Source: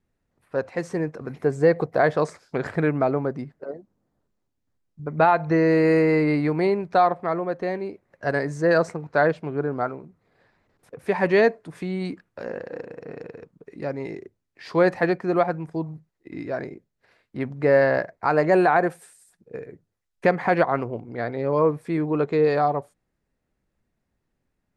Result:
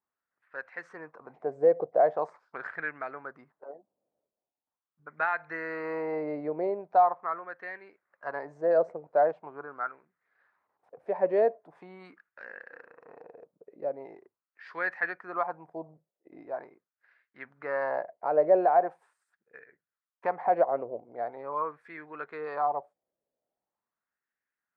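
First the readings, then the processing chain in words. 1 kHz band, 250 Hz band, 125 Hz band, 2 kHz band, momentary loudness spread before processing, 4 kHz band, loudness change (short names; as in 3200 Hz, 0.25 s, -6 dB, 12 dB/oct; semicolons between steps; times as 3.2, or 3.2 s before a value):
-4.5 dB, -17.0 dB, -24.5 dB, -8.5 dB, 18 LU, under -20 dB, -6.5 dB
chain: wah 0.42 Hz 570–1700 Hz, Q 3.3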